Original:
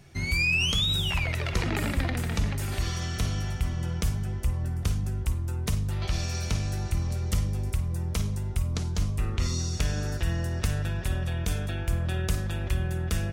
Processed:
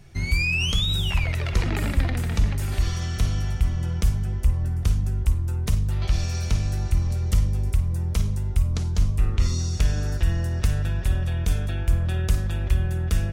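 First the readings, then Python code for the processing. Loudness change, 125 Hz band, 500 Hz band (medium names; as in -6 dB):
+4.0 dB, +4.5 dB, +0.5 dB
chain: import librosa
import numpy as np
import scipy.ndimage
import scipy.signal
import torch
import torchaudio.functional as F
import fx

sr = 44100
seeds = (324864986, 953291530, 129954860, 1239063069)

y = fx.low_shelf(x, sr, hz=69.0, db=12.0)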